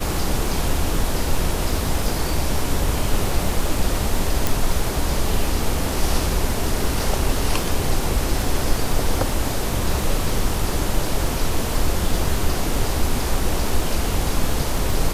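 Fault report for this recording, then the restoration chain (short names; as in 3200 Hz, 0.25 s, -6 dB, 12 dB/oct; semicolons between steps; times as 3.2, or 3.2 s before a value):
crackle 37/s -26 dBFS
4.47 pop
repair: de-click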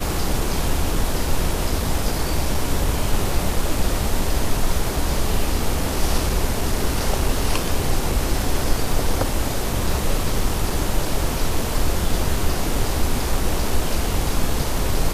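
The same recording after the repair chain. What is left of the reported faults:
none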